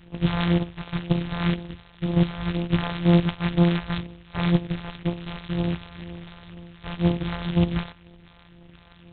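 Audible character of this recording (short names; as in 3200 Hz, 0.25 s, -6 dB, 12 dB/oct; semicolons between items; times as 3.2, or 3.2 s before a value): a buzz of ramps at a fixed pitch in blocks of 256 samples; phasing stages 2, 2 Hz, lowest notch 260–1300 Hz; G.726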